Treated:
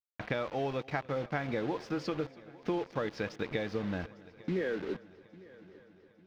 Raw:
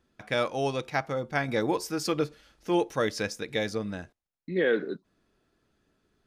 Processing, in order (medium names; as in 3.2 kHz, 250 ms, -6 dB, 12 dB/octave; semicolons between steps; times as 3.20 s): compression 10:1, threshold -36 dBFS, peak gain reduction 16 dB; word length cut 8-bit, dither none; distance through air 250 m; on a send: multi-head delay 284 ms, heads first and third, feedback 58%, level -22 dB; on the sum: trim +6.5 dB